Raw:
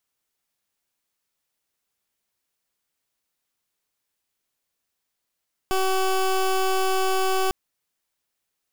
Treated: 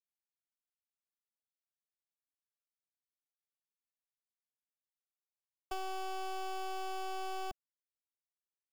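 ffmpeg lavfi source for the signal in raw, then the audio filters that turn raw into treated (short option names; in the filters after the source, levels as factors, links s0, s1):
-f lavfi -i "aevalsrc='0.0841*(2*lt(mod(379*t,1),0.19)-1)':d=1.8:s=44100"
-filter_complex "[0:a]agate=range=0.0224:threshold=0.141:ratio=3:detection=peak,equalizer=f=680:w=2.2:g=9.5,acrossover=split=210|1700|6700[s0][s1][s2][s3];[s0]acompressor=threshold=0.00631:ratio=4[s4];[s1]acompressor=threshold=0.00794:ratio=4[s5];[s2]acompressor=threshold=0.00355:ratio=4[s6];[s3]acompressor=threshold=0.001:ratio=4[s7];[s4][s5][s6][s7]amix=inputs=4:normalize=0"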